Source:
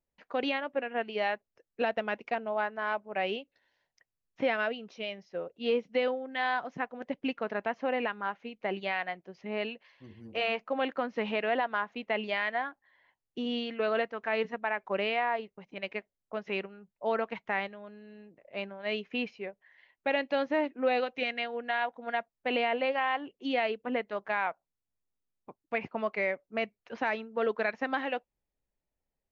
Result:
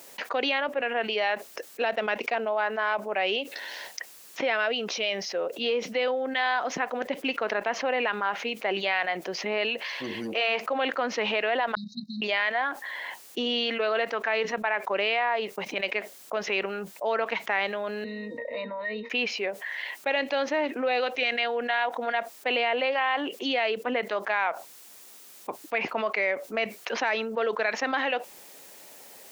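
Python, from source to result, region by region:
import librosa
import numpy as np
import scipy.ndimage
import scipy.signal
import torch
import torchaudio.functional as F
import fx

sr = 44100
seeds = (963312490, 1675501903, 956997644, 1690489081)

y = fx.chain(x, sr, fx.level_steps(step_db=18),
    fx.brickwall_bandstop(low_hz=240.0, high_hz=3700.0),
    fx.air_absorb(metres=270.0), at=(11.75, 12.22))
y = fx.chain(y, sr, fx.octave_resonator(note='A#', decay_s=0.12),
    fx.band_squash(depth_pct=70), at=(18.04, 19.1))
y = scipy.signal.sosfilt(scipy.signal.butter(2, 360.0, 'highpass', fs=sr, output='sos'), y)
y = fx.high_shelf(y, sr, hz=3300.0, db=7.5)
y = fx.env_flatten(y, sr, amount_pct=70)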